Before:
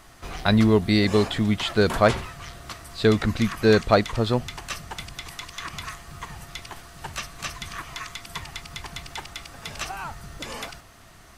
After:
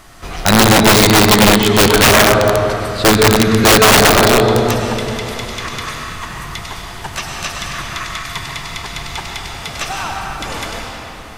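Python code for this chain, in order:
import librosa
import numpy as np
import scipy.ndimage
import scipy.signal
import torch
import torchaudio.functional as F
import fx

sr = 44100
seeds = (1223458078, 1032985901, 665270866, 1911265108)

y = fx.rev_freeverb(x, sr, rt60_s=3.3, hf_ratio=0.75, predelay_ms=65, drr_db=-1.5)
y = fx.dynamic_eq(y, sr, hz=850.0, q=3.7, threshold_db=-36.0, ratio=4.0, max_db=4)
y = (np.mod(10.0 ** (10.5 / 20.0) * y + 1.0, 2.0) - 1.0) / 10.0 ** (10.5 / 20.0)
y = y * librosa.db_to_amplitude(8.0)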